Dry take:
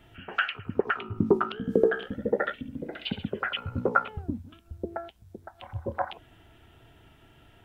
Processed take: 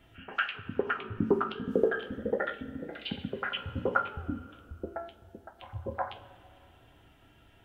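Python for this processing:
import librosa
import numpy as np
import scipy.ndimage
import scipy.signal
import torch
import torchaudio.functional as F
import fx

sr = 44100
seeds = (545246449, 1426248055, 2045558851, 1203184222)

y = fx.rev_double_slope(x, sr, seeds[0], early_s=0.25, late_s=2.5, knee_db=-18, drr_db=4.5)
y = F.gain(torch.from_numpy(y), -4.5).numpy()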